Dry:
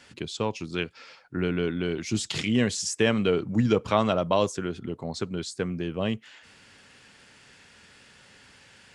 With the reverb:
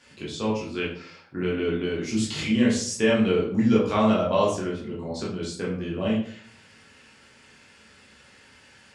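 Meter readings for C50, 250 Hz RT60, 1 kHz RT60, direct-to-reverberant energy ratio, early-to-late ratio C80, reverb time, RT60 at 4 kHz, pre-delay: 4.0 dB, 0.70 s, 0.50 s, -6.0 dB, 8.5 dB, 0.55 s, 0.35 s, 12 ms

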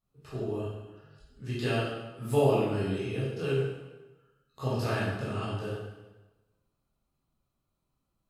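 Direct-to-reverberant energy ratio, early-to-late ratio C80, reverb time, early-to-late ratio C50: -9.5 dB, 2.5 dB, 1.1 s, -0.5 dB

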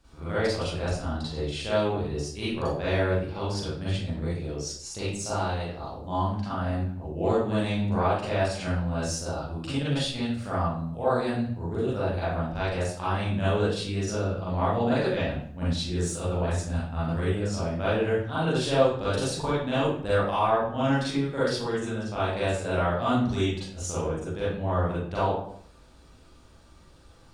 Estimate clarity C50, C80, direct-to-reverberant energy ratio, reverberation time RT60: -2.5 dB, 4.0 dB, -11.0 dB, 0.60 s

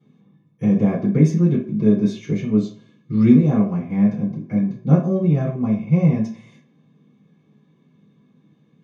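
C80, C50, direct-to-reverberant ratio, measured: 12.5 dB, 7.5 dB, -8.5 dB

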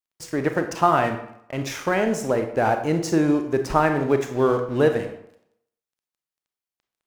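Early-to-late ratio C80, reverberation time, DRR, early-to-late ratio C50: 11.5 dB, 0.75 s, 6.0 dB, 8.5 dB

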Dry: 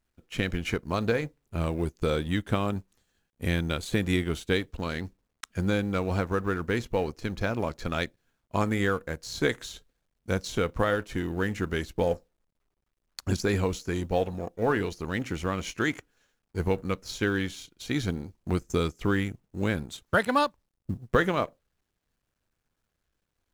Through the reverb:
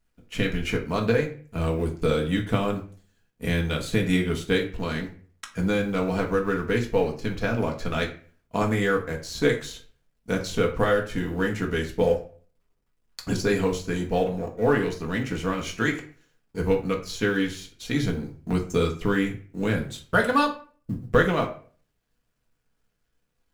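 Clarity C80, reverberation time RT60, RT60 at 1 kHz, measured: 15.5 dB, 0.40 s, 0.40 s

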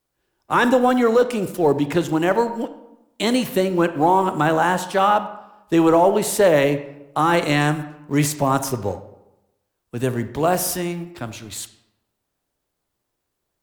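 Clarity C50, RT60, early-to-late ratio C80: 12.5 dB, 0.95 s, 15.0 dB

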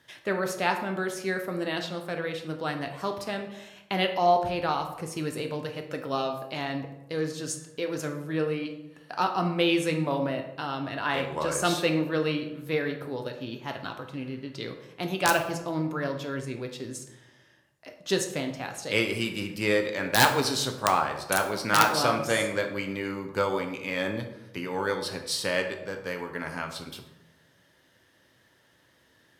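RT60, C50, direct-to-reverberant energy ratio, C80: 0.95 s, 8.0 dB, 4.0 dB, 10.5 dB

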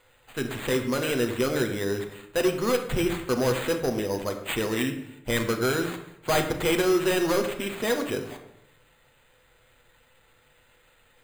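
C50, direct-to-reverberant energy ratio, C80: 9.0 dB, 4.0 dB, 11.0 dB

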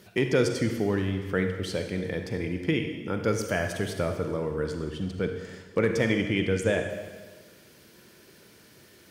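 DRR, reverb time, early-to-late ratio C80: 5.0 dB, 1.4 s, 7.5 dB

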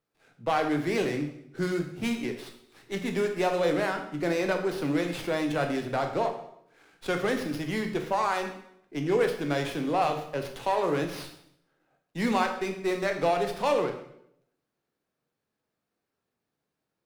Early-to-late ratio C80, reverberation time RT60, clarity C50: 11.0 dB, 0.70 s, 8.0 dB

